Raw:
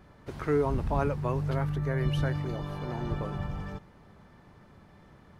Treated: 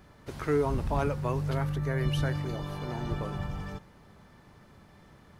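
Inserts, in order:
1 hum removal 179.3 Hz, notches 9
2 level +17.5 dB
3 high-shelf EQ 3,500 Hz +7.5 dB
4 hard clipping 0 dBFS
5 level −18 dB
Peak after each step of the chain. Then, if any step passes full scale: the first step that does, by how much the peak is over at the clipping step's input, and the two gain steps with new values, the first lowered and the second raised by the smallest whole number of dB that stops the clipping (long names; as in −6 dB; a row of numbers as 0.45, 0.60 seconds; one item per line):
−14.0, +3.5, +4.0, 0.0, −18.0 dBFS
step 2, 4.0 dB
step 2 +13.5 dB, step 5 −14 dB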